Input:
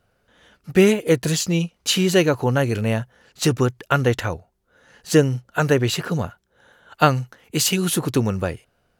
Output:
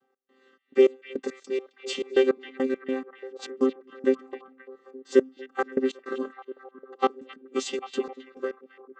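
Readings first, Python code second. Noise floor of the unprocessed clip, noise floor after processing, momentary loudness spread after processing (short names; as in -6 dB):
-68 dBFS, -70 dBFS, 20 LU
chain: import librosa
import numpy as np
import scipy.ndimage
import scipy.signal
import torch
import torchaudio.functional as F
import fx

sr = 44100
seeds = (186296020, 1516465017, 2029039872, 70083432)

y = fx.chord_vocoder(x, sr, chord='bare fifth', root=60)
y = fx.step_gate(y, sr, bpm=104, pattern='x.xx.x..x.', floor_db=-24.0, edge_ms=4.5)
y = fx.echo_stepped(y, sr, ms=265, hz=2500.0, octaves=-0.7, feedback_pct=70, wet_db=-8.0)
y = F.gain(torch.from_numpy(y), -3.5).numpy()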